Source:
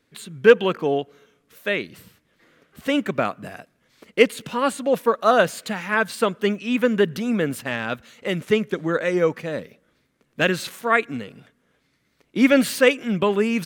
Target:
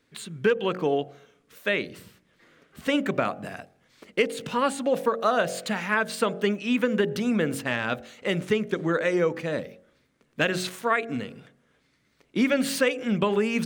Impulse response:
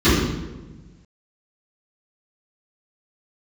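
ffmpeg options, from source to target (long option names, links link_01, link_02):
-af "equalizer=frequency=12000:width=5.8:gain=-14,bandreject=frequency=45.73:width_type=h:width=4,bandreject=frequency=91.46:width_type=h:width=4,bandreject=frequency=137.19:width_type=h:width=4,bandreject=frequency=182.92:width_type=h:width=4,bandreject=frequency=228.65:width_type=h:width=4,bandreject=frequency=274.38:width_type=h:width=4,bandreject=frequency=320.11:width_type=h:width=4,bandreject=frequency=365.84:width_type=h:width=4,bandreject=frequency=411.57:width_type=h:width=4,bandreject=frequency=457.3:width_type=h:width=4,bandreject=frequency=503.03:width_type=h:width=4,bandreject=frequency=548.76:width_type=h:width=4,bandreject=frequency=594.49:width_type=h:width=4,bandreject=frequency=640.22:width_type=h:width=4,bandreject=frequency=685.95:width_type=h:width=4,bandreject=frequency=731.68:width_type=h:width=4,bandreject=frequency=777.41:width_type=h:width=4,bandreject=frequency=823.14:width_type=h:width=4,acompressor=threshold=-19dB:ratio=6"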